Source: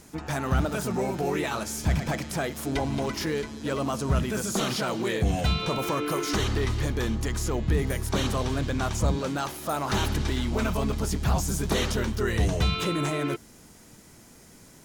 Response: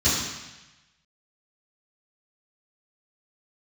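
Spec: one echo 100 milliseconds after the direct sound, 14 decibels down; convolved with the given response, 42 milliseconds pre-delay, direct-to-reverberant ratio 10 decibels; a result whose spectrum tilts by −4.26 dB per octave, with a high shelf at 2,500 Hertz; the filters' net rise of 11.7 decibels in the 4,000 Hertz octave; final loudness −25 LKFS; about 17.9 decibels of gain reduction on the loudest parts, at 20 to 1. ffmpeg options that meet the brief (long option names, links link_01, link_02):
-filter_complex "[0:a]highshelf=frequency=2500:gain=7.5,equalizer=frequency=4000:width_type=o:gain=8,acompressor=threshold=-35dB:ratio=20,aecho=1:1:100:0.2,asplit=2[link_01][link_02];[1:a]atrim=start_sample=2205,adelay=42[link_03];[link_02][link_03]afir=irnorm=-1:irlink=0,volume=-25.5dB[link_04];[link_01][link_04]amix=inputs=2:normalize=0,volume=11.5dB"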